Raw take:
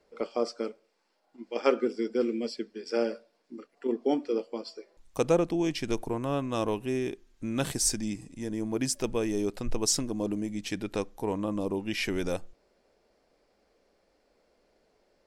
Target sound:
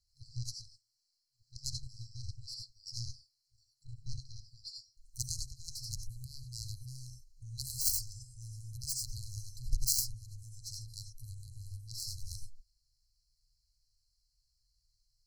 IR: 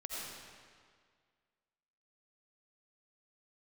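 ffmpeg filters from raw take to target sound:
-filter_complex "[1:a]atrim=start_sample=2205,afade=type=out:start_time=0.15:duration=0.01,atrim=end_sample=7056[link_01];[0:a][link_01]afir=irnorm=-1:irlink=0,aeval=exprs='0.188*(cos(1*acos(clip(val(0)/0.188,-1,1)))-cos(1*PI/2))+0.0075*(cos(2*acos(clip(val(0)/0.188,-1,1)))-cos(2*PI/2))+0.0473*(cos(7*acos(clip(val(0)/0.188,-1,1)))-cos(7*PI/2))+0.00668*(cos(8*acos(clip(val(0)/0.188,-1,1)))-cos(8*PI/2))':channel_layout=same,afftfilt=real='re*(1-between(b*sr/4096,130,4000))':imag='im*(1-between(b*sr/4096,130,4000))':win_size=4096:overlap=0.75,volume=6dB"

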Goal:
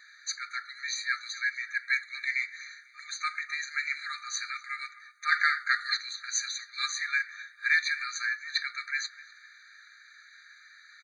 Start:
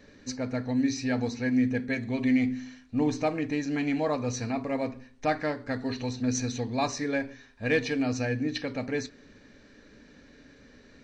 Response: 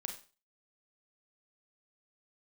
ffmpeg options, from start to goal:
-filter_complex "[0:a]asplit=2[link_01][link_02];[link_02]adelay=250,lowpass=frequency=1300:poles=1,volume=-13.5dB,asplit=2[link_03][link_04];[link_04]adelay=250,lowpass=frequency=1300:poles=1,volume=0.51,asplit=2[link_05][link_06];[link_06]adelay=250,lowpass=frequency=1300:poles=1,volume=0.51,asplit=2[link_07][link_08];[link_08]adelay=250,lowpass=frequency=1300:poles=1,volume=0.51,asplit=2[link_09][link_10];[link_10]adelay=250,lowpass=frequency=1300:poles=1,volume=0.51[link_11];[link_01][link_03][link_05][link_07][link_09][link_11]amix=inputs=6:normalize=0,asettb=1/sr,asplit=3[link_12][link_13][link_14];[link_12]atrim=end=5.324[link_15];[link_13]atrim=start=5.32:end=5.97,asetpts=PTS-STARTPTS,afade=type=in:duration=0.004:curve=qsin,afade=type=out:start_time=0.646:duration=0.004:curve=qsin,acontrast=49[link_16];[link_14]atrim=start=5.966[link_17];[link_15][link_16]acrossfade=duration=0.004:curve1=hsin:curve2=qsin[link_18];[link_18][link_17]acrossfade=duration=0.004:curve1=qsin:curve2=hsin,afftfilt=real='re*eq(mod(floor(b*sr/1024/1200),2),1)':imag='im*eq(mod(floor(b*sr/1024/1200),2),1)':win_size=1024:overlap=0.75,volume=7.5dB"

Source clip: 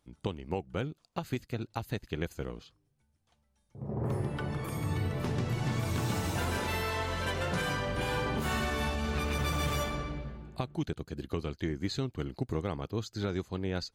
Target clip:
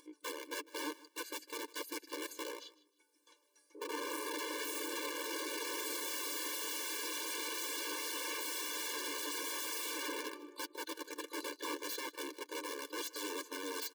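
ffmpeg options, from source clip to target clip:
ffmpeg -i in.wav -filter_complex "[0:a]asuperstop=centerf=750:order=8:qfactor=7.9,highshelf=frequency=2700:gain=5,areverse,acompressor=threshold=-32dB:ratio=12,areverse,aeval=exprs='(mod(59.6*val(0)+1,2)-1)/59.6':channel_layout=same,lowshelf=frequency=140:gain=9.5,aecho=1:1:6.7:0.34,asplit=2[link_01][link_02];[link_02]aecho=0:1:153|306:0.106|0.018[link_03];[link_01][link_03]amix=inputs=2:normalize=0,acompressor=mode=upward:threshold=-53dB:ratio=2.5,afftfilt=real='re*eq(mod(floor(b*sr/1024/300),2),1)':imag='im*eq(mod(floor(b*sr/1024/300),2),1)':win_size=1024:overlap=0.75,volume=3dB" out.wav

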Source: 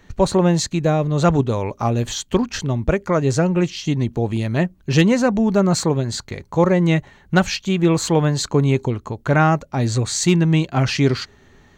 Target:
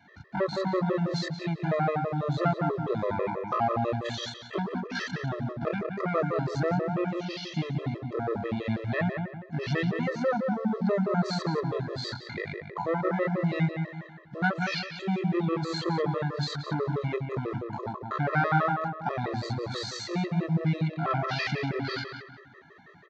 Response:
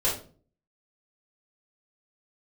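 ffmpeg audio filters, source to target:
-filter_complex "[0:a]adynamicequalizer=threshold=0.00794:dfrequency=1300:dqfactor=6.2:tfrequency=1300:tqfactor=6.2:attack=5:release=100:ratio=0.375:range=3:mode=cutabove:tftype=bell,acompressor=threshold=-16dB:ratio=16,acrusher=bits=6:mode=log:mix=0:aa=0.000001,atempo=0.51,asoftclip=type=tanh:threshold=-19.5dB,highpass=frequency=120:width=0.5412,highpass=frequency=120:width=1.3066,equalizer=frequency=120:width_type=q:width=4:gain=-6,equalizer=frequency=260:width_type=q:width=4:gain=-8,equalizer=frequency=740:width_type=q:width=4:gain=4,equalizer=frequency=1300:width_type=q:width=4:gain=7,equalizer=frequency=1900:width_type=q:width=4:gain=5,equalizer=frequency=2900:width_type=q:width=4:gain=-7,lowpass=frequency=4300:width=0.5412,lowpass=frequency=4300:width=1.3066,asplit=2[link_01][link_02];[link_02]adelay=179,lowpass=frequency=2000:poles=1,volume=-4dB,asplit=2[link_03][link_04];[link_04]adelay=179,lowpass=frequency=2000:poles=1,volume=0.41,asplit=2[link_05][link_06];[link_06]adelay=179,lowpass=frequency=2000:poles=1,volume=0.41,asplit=2[link_07][link_08];[link_08]adelay=179,lowpass=frequency=2000:poles=1,volume=0.41,asplit=2[link_09][link_10];[link_10]adelay=179,lowpass=frequency=2000:poles=1,volume=0.41[link_11];[link_03][link_05][link_07][link_09][link_11]amix=inputs=5:normalize=0[link_12];[link_01][link_12]amix=inputs=2:normalize=0,afftfilt=real='re*gt(sin(2*PI*6.1*pts/sr)*(1-2*mod(floor(b*sr/1024/340),2)),0)':imag='im*gt(sin(2*PI*6.1*pts/sr)*(1-2*mod(floor(b*sr/1024/340),2)),0)':win_size=1024:overlap=0.75"

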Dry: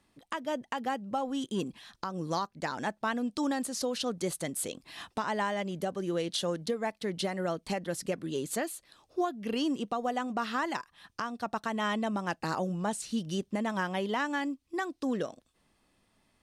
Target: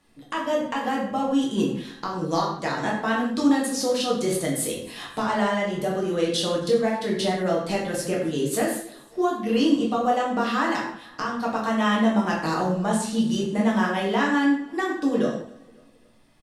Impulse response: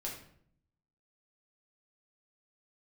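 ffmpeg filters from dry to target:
-filter_complex "[0:a]aecho=1:1:271|542|813:0.0708|0.0311|0.0137[link_01];[1:a]atrim=start_sample=2205,afade=type=out:start_time=0.22:duration=0.01,atrim=end_sample=10143,asetrate=34839,aresample=44100[link_02];[link_01][link_02]afir=irnorm=-1:irlink=0,volume=6.5dB"

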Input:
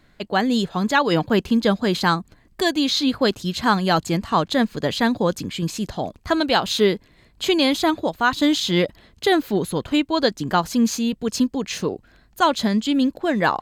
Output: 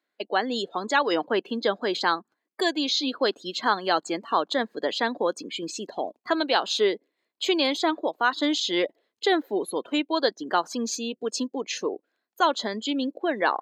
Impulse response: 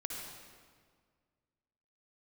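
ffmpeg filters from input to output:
-filter_complex "[0:a]afftdn=noise_reduction=22:noise_floor=-35,highpass=frequency=310:width=0.5412,highpass=frequency=310:width=1.3066,asplit=2[link_01][link_02];[link_02]acompressor=threshold=-32dB:ratio=6,volume=0dB[link_03];[link_01][link_03]amix=inputs=2:normalize=0,volume=-5dB"

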